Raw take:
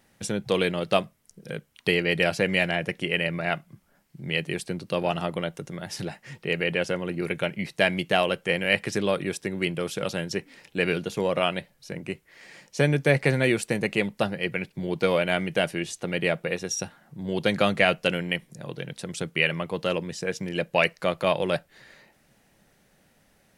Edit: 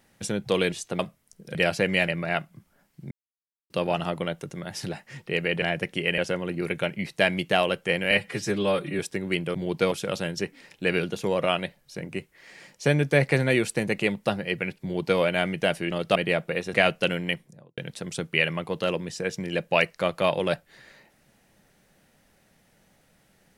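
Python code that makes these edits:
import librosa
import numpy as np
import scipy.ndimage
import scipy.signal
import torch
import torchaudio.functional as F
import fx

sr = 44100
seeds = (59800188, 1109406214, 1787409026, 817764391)

y = fx.studio_fade_out(x, sr, start_s=18.32, length_s=0.48)
y = fx.edit(y, sr, fx.swap(start_s=0.72, length_s=0.25, other_s=15.84, other_length_s=0.27),
    fx.cut(start_s=1.53, length_s=0.62),
    fx.move(start_s=2.68, length_s=0.56, to_s=6.78),
    fx.silence(start_s=4.27, length_s=0.59),
    fx.stretch_span(start_s=8.71, length_s=0.59, factor=1.5),
    fx.duplicate(start_s=14.76, length_s=0.37, to_s=9.85),
    fx.cut(start_s=16.69, length_s=1.07), tone=tone)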